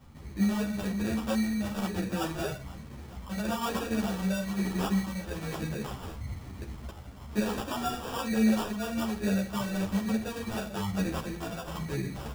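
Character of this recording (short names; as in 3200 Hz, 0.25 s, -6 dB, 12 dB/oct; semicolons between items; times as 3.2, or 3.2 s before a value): phasing stages 8, 1.1 Hz, lowest notch 350–1000 Hz; aliases and images of a low sample rate 2100 Hz, jitter 0%; a shimmering, thickened sound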